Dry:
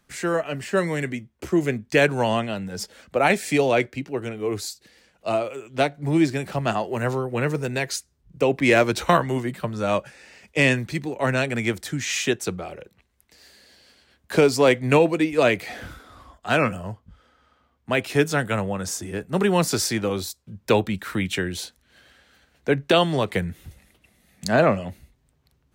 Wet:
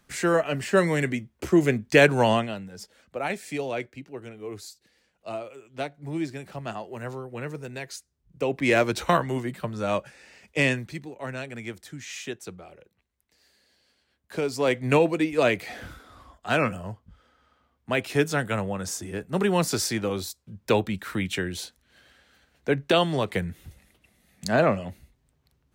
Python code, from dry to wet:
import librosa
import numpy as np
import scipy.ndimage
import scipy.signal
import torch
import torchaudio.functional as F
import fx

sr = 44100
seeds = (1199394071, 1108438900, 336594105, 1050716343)

y = fx.gain(x, sr, db=fx.line((2.31, 1.5), (2.74, -10.5), (7.97, -10.5), (8.76, -3.5), (10.61, -3.5), (11.2, -12.0), (14.35, -12.0), (14.87, -3.0)))